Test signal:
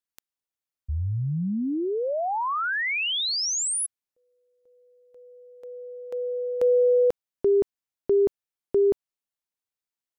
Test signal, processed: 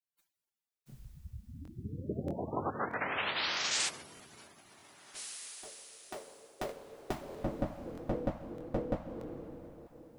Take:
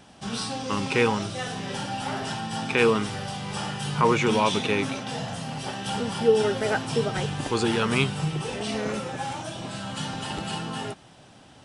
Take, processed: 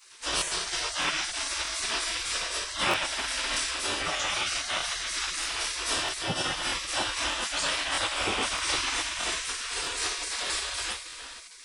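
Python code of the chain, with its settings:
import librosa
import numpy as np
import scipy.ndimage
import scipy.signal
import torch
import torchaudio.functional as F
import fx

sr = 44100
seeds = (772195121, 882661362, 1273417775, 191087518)

y = fx.rev_double_slope(x, sr, seeds[0], early_s=0.27, late_s=4.0, knee_db=-18, drr_db=-7.5)
y = fx.rider(y, sr, range_db=3, speed_s=0.5)
y = fx.spec_gate(y, sr, threshold_db=-20, keep='weak')
y = fx.buffer_crackle(y, sr, first_s=0.37, period_s=0.63, block=1024, kind='repeat')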